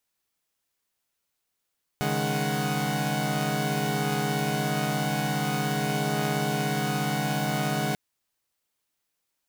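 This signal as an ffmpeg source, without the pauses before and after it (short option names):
-f lavfi -i "aevalsrc='0.0398*((2*mod(138.59*t,1)-1)+(2*mod(155.56*t,1)-1)+(2*mod(207.65*t,1)-1)+(2*mod(739.99*t,1)-1))':d=5.94:s=44100"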